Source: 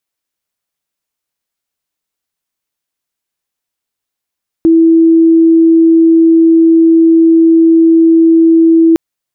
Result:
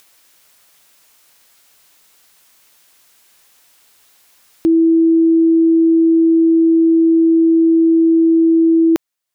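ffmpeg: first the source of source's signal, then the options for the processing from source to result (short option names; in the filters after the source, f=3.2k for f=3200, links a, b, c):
-f lavfi -i "sine=f=328:d=4.31:r=44100,volume=15.06dB"
-af "lowshelf=f=420:g=-8,acompressor=mode=upward:threshold=-30dB:ratio=2.5"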